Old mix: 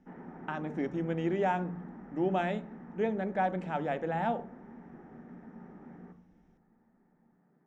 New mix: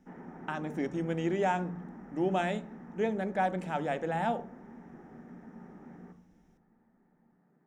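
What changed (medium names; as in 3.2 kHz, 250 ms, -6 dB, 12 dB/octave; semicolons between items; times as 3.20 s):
speech: remove distance through air 77 m; master: add treble shelf 5.1 kHz +7 dB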